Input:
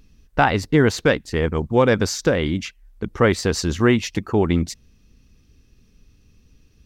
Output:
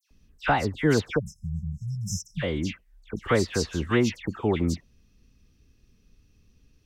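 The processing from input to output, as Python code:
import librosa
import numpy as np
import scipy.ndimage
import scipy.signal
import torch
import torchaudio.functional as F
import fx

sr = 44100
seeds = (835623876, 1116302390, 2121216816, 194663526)

y = fx.spec_erase(x, sr, start_s=1.09, length_s=1.24, low_hz=210.0, high_hz=5100.0)
y = fx.dispersion(y, sr, late='lows', ms=109.0, hz=2300.0)
y = F.gain(torch.from_numpy(y), -6.0).numpy()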